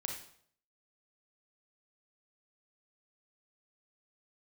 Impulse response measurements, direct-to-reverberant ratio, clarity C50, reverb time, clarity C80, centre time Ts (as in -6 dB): 1.0 dB, 4.0 dB, 0.60 s, 8.5 dB, 30 ms